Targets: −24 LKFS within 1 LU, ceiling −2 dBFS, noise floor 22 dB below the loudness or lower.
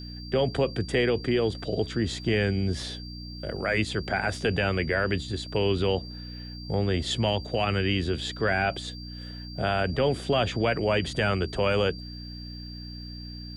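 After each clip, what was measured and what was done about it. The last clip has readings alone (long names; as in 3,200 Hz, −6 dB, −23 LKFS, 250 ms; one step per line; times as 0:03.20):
mains hum 60 Hz; hum harmonics up to 300 Hz; level of the hum −38 dBFS; interfering tone 4,700 Hz; level of the tone −43 dBFS; integrated loudness −27.0 LKFS; sample peak −14.0 dBFS; target loudness −24.0 LKFS
→ hum removal 60 Hz, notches 5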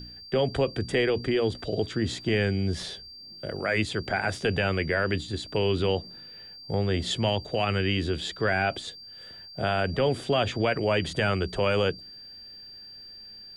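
mains hum none found; interfering tone 4,700 Hz; level of the tone −43 dBFS
→ notch filter 4,700 Hz, Q 30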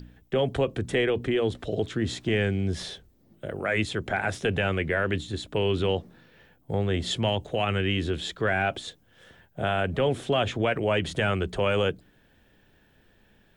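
interfering tone none found; integrated loudness −27.0 LKFS; sample peak −14.0 dBFS; target loudness −24.0 LKFS
→ level +3 dB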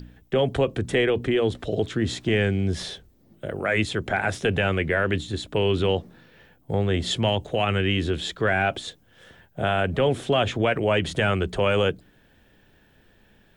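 integrated loudness −24.0 LKFS; sample peak −11.0 dBFS; background noise floor −59 dBFS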